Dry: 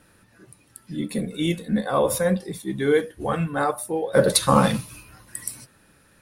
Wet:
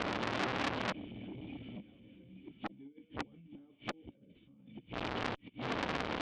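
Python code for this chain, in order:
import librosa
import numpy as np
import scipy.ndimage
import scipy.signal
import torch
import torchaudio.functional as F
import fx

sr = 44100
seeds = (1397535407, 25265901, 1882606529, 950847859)

y = fx.delta_mod(x, sr, bps=32000, step_db=-28.0)
y = fx.highpass(y, sr, hz=40.0, slope=6)
y = fx.low_shelf(y, sr, hz=100.0, db=4.5)
y = fx.over_compress(y, sr, threshold_db=-24.0, ratio=-1.0)
y = fx.gate_flip(y, sr, shuts_db=-21.0, range_db=-38)
y = fx.chorus_voices(y, sr, voices=4, hz=1.0, base_ms=13, depth_ms=4.1, mix_pct=20)
y = fx.formant_cascade(y, sr, vowel='i')
y = fx.echo_feedback(y, sr, ms=884, feedback_pct=20, wet_db=-19.0)
y = fx.transformer_sat(y, sr, knee_hz=2800.0)
y = F.gain(torch.from_numpy(y), 17.0).numpy()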